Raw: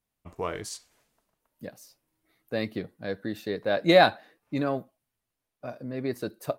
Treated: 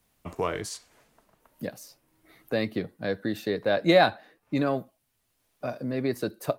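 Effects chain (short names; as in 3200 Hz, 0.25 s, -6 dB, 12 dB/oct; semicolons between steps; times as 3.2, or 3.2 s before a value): three-band squash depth 40%; gain +2.5 dB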